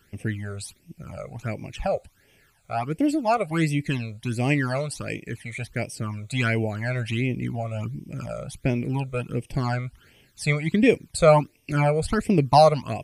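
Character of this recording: phasing stages 12, 1.4 Hz, lowest notch 280–1400 Hz

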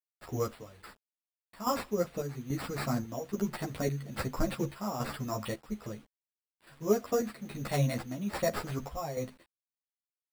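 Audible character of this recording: aliases and images of a low sample rate 6.3 kHz, jitter 0%; chopped level 1.2 Hz, depth 60%, duty 65%; a quantiser's noise floor 10-bit, dither none; a shimmering, thickened sound

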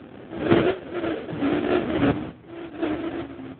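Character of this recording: phasing stages 2, 1.1 Hz, lowest notch 640–1500 Hz; aliases and images of a low sample rate 1 kHz, jitter 20%; chopped level 0.71 Hz, depth 60%, duty 50%; AMR-NB

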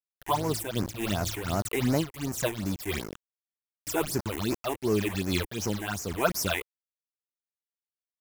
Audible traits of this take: a quantiser's noise floor 6-bit, dither none; phasing stages 8, 2.7 Hz, lowest notch 160–3500 Hz; random flutter of the level

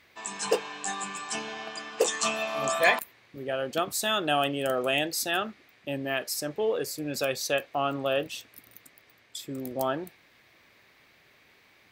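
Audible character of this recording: noise floor -61 dBFS; spectral tilt -3.5 dB/octave

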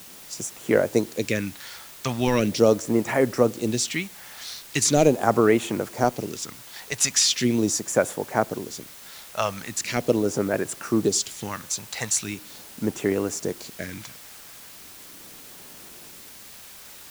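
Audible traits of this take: phasing stages 2, 0.4 Hz, lowest notch 290–4300 Hz; a quantiser's noise floor 8-bit, dither triangular

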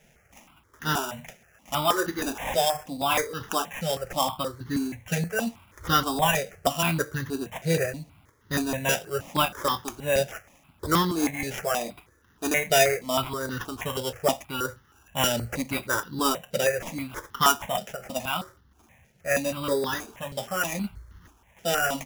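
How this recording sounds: aliases and images of a low sample rate 4.3 kHz, jitter 0%; tremolo triangle 2.6 Hz, depth 40%; notches that jump at a steady rate 6.3 Hz 300–2400 Hz

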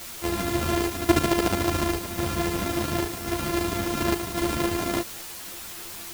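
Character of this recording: a buzz of ramps at a fixed pitch in blocks of 128 samples; chopped level 0.92 Hz, depth 60%, duty 80%; a quantiser's noise floor 6-bit, dither triangular; a shimmering, thickened sound

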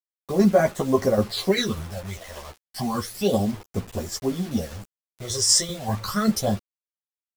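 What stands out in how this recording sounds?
tremolo saw down 5.1 Hz, depth 55%; phasing stages 12, 0.32 Hz, lowest notch 240–4400 Hz; a quantiser's noise floor 8-bit, dither none; a shimmering, thickened sound

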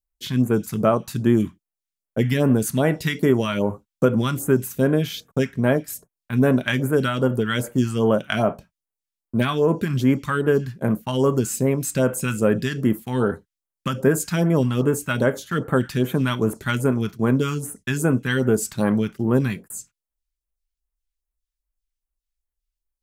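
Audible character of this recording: phasing stages 2, 2.5 Hz, lowest notch 450–4700 Hz

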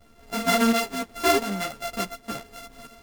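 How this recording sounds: a buzz of ramps at a fixed pitch in blocks of 64 samples; tremolo saw up 1.4 Hz, depth 60%; a shimmering, thickened sound

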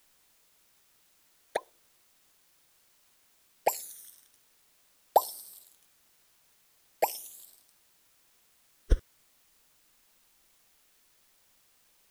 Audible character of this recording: phasing stages 12, 0.42 Hz, lowest notch 800–2400 Hz; a quantiser's noise floor 12-bit, dither triangular

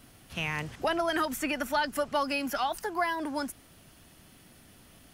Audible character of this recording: noise floor -57 dBFS; spectral tilt -3.5 dB/octave

